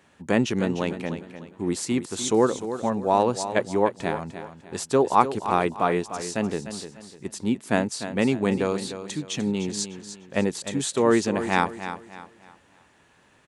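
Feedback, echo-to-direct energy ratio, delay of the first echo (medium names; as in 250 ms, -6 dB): 34%, -10.5 dB, 300 ms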